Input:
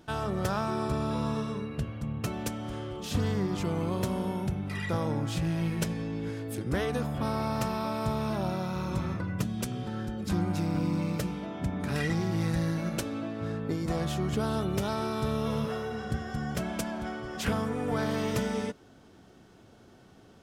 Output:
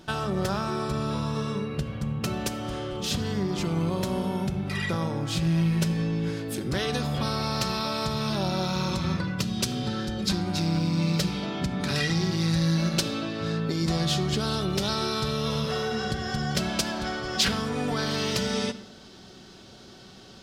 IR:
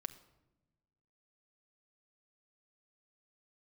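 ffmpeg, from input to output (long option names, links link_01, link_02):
-filter_complex "[0:a]acompressor=threshold=-30dB:ratio=6,asetnsamples=nb_out_samples=441:pad=0,asendcmd='6.72 equalizer g 14.5',equalizer=frequency=4400:width_type=o:width=1.3:gain=6[link_01];[1:a]atrim=start_sample=2205,afade=type=out:start_time=0.38:duration=0.01,atrim=end_sample=17199[link_02];[link_01][link_02]afir=irnorm=-1:irlink=0,volume=8dB"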